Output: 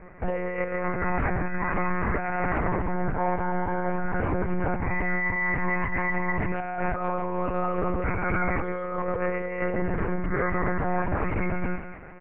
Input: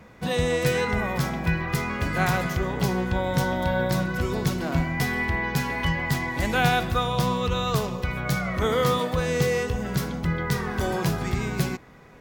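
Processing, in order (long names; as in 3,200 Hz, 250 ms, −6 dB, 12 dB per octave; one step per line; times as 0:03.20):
elliptic low-pass filter 2,300 Hz, stop band 50 dB
comb filter 4.2 ms, depth 69%
feedback echo with a high-pass in the loop 169 ms, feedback 48%, high-pass 230 Hz, level −10 dB
compressor whose output falls as the input rises −26 dBFS, ratio −1
one-pitch LPC vocoder at 8 kHz 180 Hz
highs frequency-modulated by the lows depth 0.12 ms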